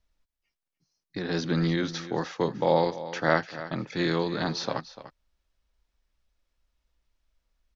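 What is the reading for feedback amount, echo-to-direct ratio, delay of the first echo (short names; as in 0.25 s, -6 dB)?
no steady repeat, -14.5 dB, 0.295 s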